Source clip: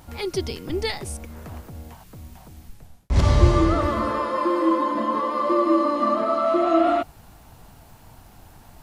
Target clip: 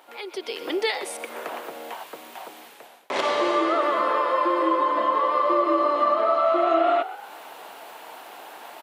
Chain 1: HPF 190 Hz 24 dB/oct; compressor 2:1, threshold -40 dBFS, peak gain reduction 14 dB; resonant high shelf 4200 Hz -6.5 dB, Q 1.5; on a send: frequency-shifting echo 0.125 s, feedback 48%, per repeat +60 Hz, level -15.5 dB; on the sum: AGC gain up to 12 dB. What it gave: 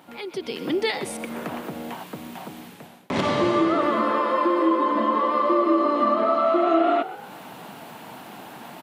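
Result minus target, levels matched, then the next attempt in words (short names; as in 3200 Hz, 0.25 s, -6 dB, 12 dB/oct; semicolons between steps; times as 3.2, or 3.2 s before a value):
250 Hz band +6.0 dB
HPF 400 Hz 24 dB/oct; compressor 2:1, threshold -40 dBFS, peak gain reduction 13 dB; resonant high shelf 4200 Hz -6.5 dB, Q 1.5; on a send: frequency-shifting echo 0.125 s, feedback 48%, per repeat +60 Hz, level -15.5 dB; on the sum: AGC gain up to 12 dB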